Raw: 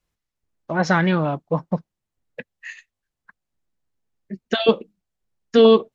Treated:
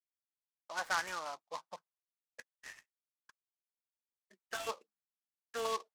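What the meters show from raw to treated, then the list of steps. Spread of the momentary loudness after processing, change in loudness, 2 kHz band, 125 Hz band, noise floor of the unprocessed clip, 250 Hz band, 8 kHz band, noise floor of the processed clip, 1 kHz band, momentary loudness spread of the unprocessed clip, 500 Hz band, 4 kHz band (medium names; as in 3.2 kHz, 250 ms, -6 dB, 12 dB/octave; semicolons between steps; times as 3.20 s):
22 LU, -20.0 dB, -13.0 dB, under -40 dB, -84 dBFS, -38.0 dB, no reading, under -85 dBFS, -13.5 dB, 24 LU, -25.5 dB, -17.0 dB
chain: expander -48 dBFS; ladder band-pass 1.4 kHz, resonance 25%; delay time shaken by noise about 3.8 kHz, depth 0.047 ms; trim -2 dB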